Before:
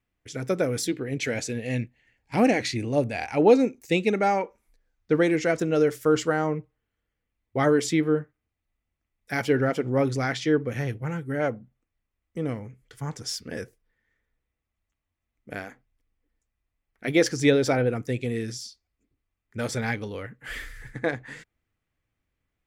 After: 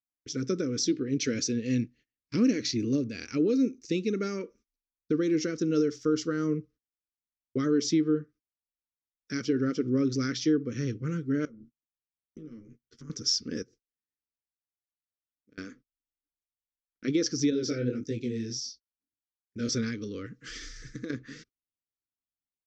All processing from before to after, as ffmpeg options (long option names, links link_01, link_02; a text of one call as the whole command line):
ffmpeg -i in.wav -filter_complex "[0:a]asettb=1/sr,asplit=3[link_01][link_02][link_03];[link_01]atrim=end=11.454[link_04];[link_02]atrim=start=11.45:end=13.1,asetpts=PTS-STARTPTS,afade=type=in:duration=0.004:curve=qsin,afade=type=out:start_time=1.646:duration=0.004:curve=qsin,acompressor=threshold=-41dB:ratio=10:attack=3.2:release=140:knee=1:detection=peak,tremolo=f=110:d=0.824,asplit=2[link_05][link_06];[link_06]adelay=13,volume=-3dB[link_07];[link_05][link_07]amix=inputs=2:normalize=0,atrim=end_sample=72765[link_08];[link_03]atrim=start=13.096[link_09];[link_04][link_08]acrossfade=duration=0.004:curve1=hsin:curve2=qsin[link_10];[link_10][link_09]acrossfade=duration=0.004:curve1=qsin:curve2=hsin,asettb=1/sr,asplit=3[link_11][link_12][link_13];[link_11]atrim=end=13.624[link_14];[link_12]atrim=start=13.62:end=15.58,asetpts=PTS-STARTPTS,afade=type=in:duration=0.004:curve=qsin,afade=type=out:start_time=1.956:duration=0.004:curve=qsin,highpass=41,acompressor=threshold=-50dB:ratio=16:attack=3.2:release=140:knee=1:detection=peak,acrusher=bits=8:mode=log:mix=0:aa=0.000001[link_15];[link_13]atrim=start=15.576[link_16];[link_14][link_15]acrossfade=duration=0.004:curve1=hsin:curve2=qsin[link_17];[link_17][link_16]acrossfade=duration=0.004:curve1=qsin:curve2=hsin,asettb=1/sr,asplit=3[link_18][link_19][link_20];[link_18]atrim=end=17.504[link_21];[link_19]atrim=start=17.5:end=19.69,asetpts=PTS-STARTPTS,afade=type=in:duration=0.004:curve=qsin,afade=type=out:start_time=2.186:duration=0.004:curve=qsin,asuperstop=centerf=1000:order=4:qfactor=1.5,flanger=delay=18:depth=7.6:speed=1.6[link_22];[link_20]atrim=start=19.686[link_23];[link_21][link_22]acrossfade=duration=0.004:curve1=hsin:curve2=qsin[link_24];[link_24][link_23]acrossfade=duration=0.004:curve1=qsin:curve2=hsin,asettb=1/sr,asplit=3[link_25][link_26][link_27];[link_25]atrim=end=20.264[link_28];[link_26]atrim=start=20.26:end=21.1,asetpts=PTS-STARTPTS,afade=type=in:duration=0.004:curve=qsin,afade=type=out:start_time=0.836:duration=0.004:curve=qsin,equalizer=frequency=8400:width=0.52:gain=9.5,aecho=1:1:6.2:0.3,atrim=end_sample=37044,acompressor=threshold=-32dB:ratio=12:attack=3.2:release=140:knee=1:detection=peak[link_29];[link_27]atrim=start=21.096[link_30];[link_28][link_29]acrossfade=duration=0.004:curve1=hsin:curve2=qsin[link_31];[link_31][link_30]acrossfade=duration=0.004:curve1=qsin:curve2=hsin,alimiter=limit=-17dB:level=0:latency=1:release=352,agate=range=-26dB:threshold=-52dB:ratio=16:detection=peak,firequalizer=gain_entry='entry(100,0);entry(270,10);entry(470,2);entry(770,-29);entry(1200,1);entry(1900,-5);entry(5700,13);entry(9700,-27)':delay=0.05:min_phase=1,volume=-4.5dB" out.wav